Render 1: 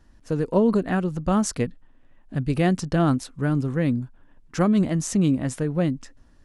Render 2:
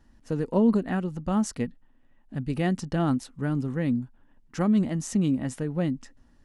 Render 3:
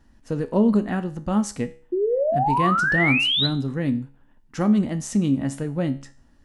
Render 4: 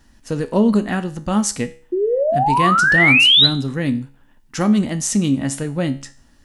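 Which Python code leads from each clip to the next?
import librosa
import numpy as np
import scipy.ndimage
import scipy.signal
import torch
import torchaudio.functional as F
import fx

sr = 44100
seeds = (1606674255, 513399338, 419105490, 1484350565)

y1 = fx.small_body(x, sr, hz=(230.0, 840.0, 1900.0, 2900.0), ring_ms=45, db=6)
y1 = fx.rider(y1, sr, range_db=4, speed_s=2.0)
y1 = y1 * librosa.db_to_amplitude(-6.0)
y2 = fx.spec_paint(y1, sr, seeds[0], shape='rise', start_s=1.92, length_s=1.55, low_hz=350.0, high_hz=4100.0, level_db=-24.0)
y2 = fx.comb_fb(y2, sr, f0_hz=69.0, decay_s=0.43, harmonics='all', damping=0.0, mix_pct=60)
y2 = y2 * librosa.db_to_amplitude(8.0)
y3 = fx.high_shelf(y2, sr, hz=2000.0, db=10.0)
y3 = y3 * librosa.db_to_amplitude(3.0)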